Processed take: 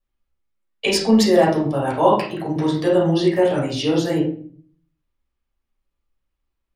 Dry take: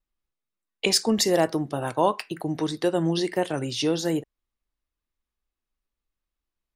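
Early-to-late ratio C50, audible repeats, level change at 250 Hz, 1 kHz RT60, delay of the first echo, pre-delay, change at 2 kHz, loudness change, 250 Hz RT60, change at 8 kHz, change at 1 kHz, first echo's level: 5.5 dB, no echo, +7.5 dB, 0.45 s, no echo, 9 ms, +5.0 dB, +6.5 dB, 0.70 s, -2.0 dB, +6.5 dB, no echo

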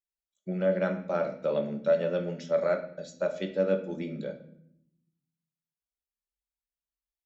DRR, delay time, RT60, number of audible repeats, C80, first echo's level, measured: 5.0 dB, no echo, 0.70 s, no echo, 14.0 dB, no echo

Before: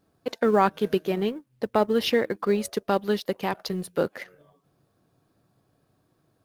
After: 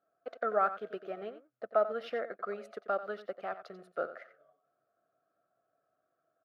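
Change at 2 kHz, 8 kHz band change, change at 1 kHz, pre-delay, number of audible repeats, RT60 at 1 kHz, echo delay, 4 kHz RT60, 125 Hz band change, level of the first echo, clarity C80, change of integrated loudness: -9.5 dB, under -25 dB, -7.5 dB, no reverb, 1, no reverb, 90 ms, no reverb, under -20 dB, -13.0 dB, no reverb, -10.0 dB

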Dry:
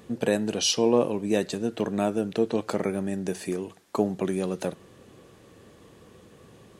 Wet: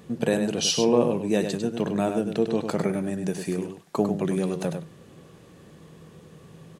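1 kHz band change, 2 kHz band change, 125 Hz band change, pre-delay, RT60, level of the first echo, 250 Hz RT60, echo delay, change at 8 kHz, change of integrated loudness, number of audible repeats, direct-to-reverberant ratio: +1.0 dB, +1.0 dB, +4.0 dB, no reverb, no reverb, -7.0 dB, no reverb, 100 ms, +0.5 dB, +1.5 dB, 1, no reverb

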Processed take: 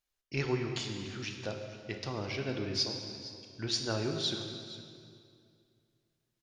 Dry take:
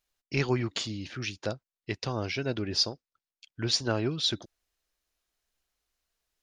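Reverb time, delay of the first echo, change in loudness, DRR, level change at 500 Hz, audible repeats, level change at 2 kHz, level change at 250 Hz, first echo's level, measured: 2.3 s, 464 ms, -5.0 dB, 3.0 dB, -3.5 dB, 1, -4.5 dB, -4.0 dB, -16.5 dB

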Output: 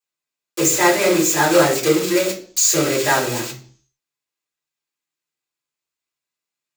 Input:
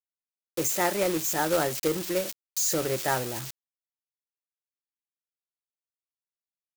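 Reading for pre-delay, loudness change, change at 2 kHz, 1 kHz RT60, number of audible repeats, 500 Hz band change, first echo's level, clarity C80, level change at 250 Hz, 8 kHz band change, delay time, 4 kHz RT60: 3 ms, +10.5 dB, +12.5 dB, 0.45 s, no echo, +10.5 dB, no echo, 14.5 dB, +12.0 dB, +11.5 dB, no echo, 0.55 s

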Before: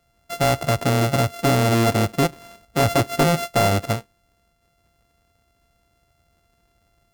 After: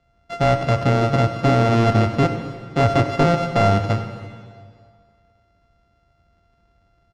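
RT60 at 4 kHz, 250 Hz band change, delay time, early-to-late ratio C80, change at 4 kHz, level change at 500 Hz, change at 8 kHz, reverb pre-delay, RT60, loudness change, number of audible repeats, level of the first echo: 1.8 s, +2.0 dB, 96 ms, 8.5 dB, -3.5 dB, +2.0 dB, -12.0 dB, 7 ms, 2.0 s, +1.5 dB, 1, -16.0 dB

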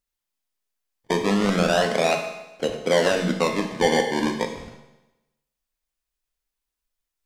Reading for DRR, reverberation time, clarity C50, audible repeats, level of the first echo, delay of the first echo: 3.0 dB, 1.0 s, 6.5 dB, no echo, no echo, no echo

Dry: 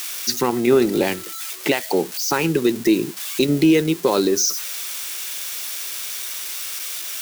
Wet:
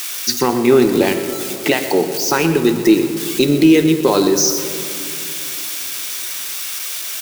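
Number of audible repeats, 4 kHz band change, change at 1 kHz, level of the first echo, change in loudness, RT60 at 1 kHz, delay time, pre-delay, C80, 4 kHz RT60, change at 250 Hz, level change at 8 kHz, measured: 1, +4.0 dB, +4.5 dB, -13.5 dB, +4.5 dB, 2.6 s, 123 ms, 3 ms, 8.5 dB, 1.3 s, +5.0 dB, +4.0 dB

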